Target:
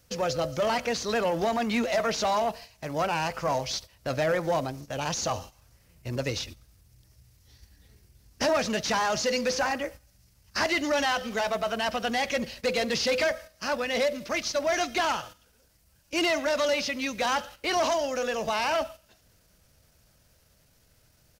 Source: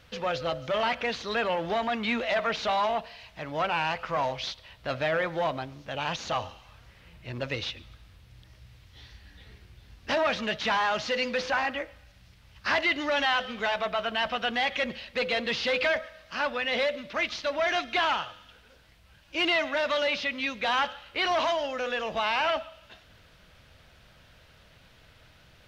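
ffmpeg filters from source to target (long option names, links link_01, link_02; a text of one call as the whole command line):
ffmpeg -i in.wav -filter_complex "[0:a]agate=range=-10dB:threshold=-45dB:ratio=16:detection=peak,acrossover=split=670[link_01][link_02];[link_01]acontrast=63[link_03];[link_03][link_02]amix=inputs=2:normalize=0,atempo=1.2,aexciter=amount=9.4:drive=1.4:freq=5000,volume=-2dB" out.wav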